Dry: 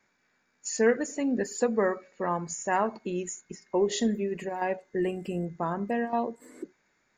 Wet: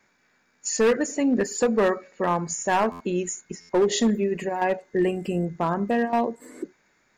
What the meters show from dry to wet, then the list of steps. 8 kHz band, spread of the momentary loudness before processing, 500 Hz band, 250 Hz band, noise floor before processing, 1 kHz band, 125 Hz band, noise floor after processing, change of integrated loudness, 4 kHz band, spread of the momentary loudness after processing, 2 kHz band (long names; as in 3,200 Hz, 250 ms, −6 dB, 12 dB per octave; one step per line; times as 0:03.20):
+6.0 dB, 12 LU, +5.0 dB, +5.5 dB, −72 dBFS, +5.0 dB, +6.0 dB, −66 dBFS, +5.0 dB, +6.5 dB, 10 LU, +4.5 dB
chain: gain into a clipping stage and back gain 21 dB
buffer that repeats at 0:02.91/0:03.60, samples 512, times 7
level +6 dB